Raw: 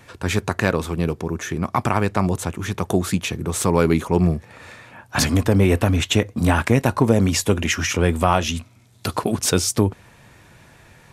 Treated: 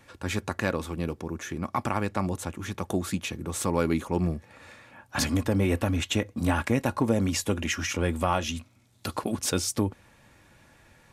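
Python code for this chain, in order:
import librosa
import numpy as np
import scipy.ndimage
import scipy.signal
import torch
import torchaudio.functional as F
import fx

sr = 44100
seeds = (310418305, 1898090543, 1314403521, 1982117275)

y = x + 0.3 * np.pad(x, (int(3.6 * sr / 1000.0), 0))[:len(x)]
y = y * 10.0 ** (-8.0 / 20.0)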